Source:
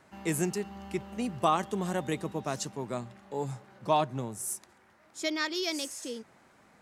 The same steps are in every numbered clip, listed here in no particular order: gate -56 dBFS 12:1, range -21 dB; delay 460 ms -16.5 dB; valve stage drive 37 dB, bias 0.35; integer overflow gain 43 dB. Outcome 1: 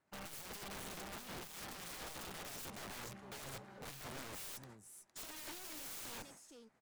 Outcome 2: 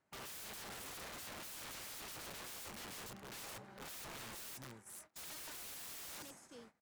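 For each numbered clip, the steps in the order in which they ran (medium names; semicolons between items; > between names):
gate > valve stage > delay > integer overflow; delay > integer overflow > valve stage > gate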